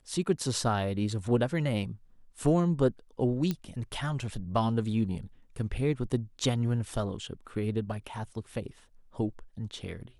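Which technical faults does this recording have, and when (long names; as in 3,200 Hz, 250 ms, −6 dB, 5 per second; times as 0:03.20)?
0:03.51: click −17 dBFS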